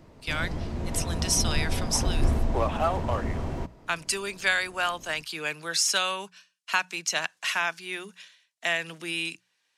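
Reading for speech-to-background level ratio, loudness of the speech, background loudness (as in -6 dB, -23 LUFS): 3.0 dB, -28.5 LUFS, -31.5 LUFS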